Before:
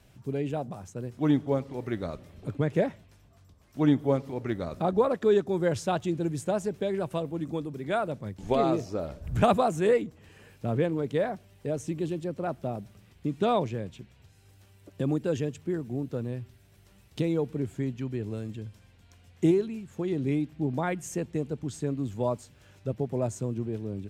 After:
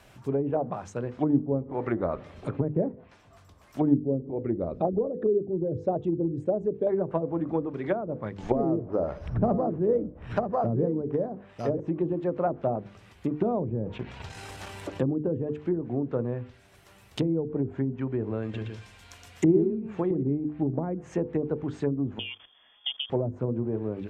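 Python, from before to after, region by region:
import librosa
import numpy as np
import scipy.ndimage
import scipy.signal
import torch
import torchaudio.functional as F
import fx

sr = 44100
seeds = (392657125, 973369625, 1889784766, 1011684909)

y = fx.chain(x, sr, fx.envelope_sharpen(power=1.5),
    fx.peak_eq(hz=1300.0, db=-12.0, octaves=1.6), at=(3.94, 6.87))
y = fx.chain(y, sr, fx.echo_single(ms=949, db=-9.0),
    fx.resample_bad(factor=8, down='none', up='hold'), at=(8.56, 11.8))
y = fx.chain(y, sr, fx.peak_eq(hz=880.0, db=4.0, octaves=0.31),
    fx.transient(attack_db=-1, sustain_db=-10),
    fx.env_flatten(amount_pct=50), at=(13.68, 15.1))
y = fx.chain(y, sr, fx.high_shelf(hz=2200.0, db=8.0),
    fx.echo_single(ms=117, db=-5.0), at=(18.42, 20.23))
y = fx.chain(y, sr, fx.level_steps(step_db=17),
    fx.freq_invert(carrier_hz=3400), at=(22.19, 23.1))
y = fx.hum_notches(y, sr, base_hz=50, count=10)
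y = fx.env_lowpass_down(y, sr, base_hz=310.0, full_db=-25.5)
y = fx.curve_eq(y, sr, hz=(160.0, 1100.0, 4900.0), db=(0, 10, 3))
y = y * 10.0 ** (1.5 / 20.0)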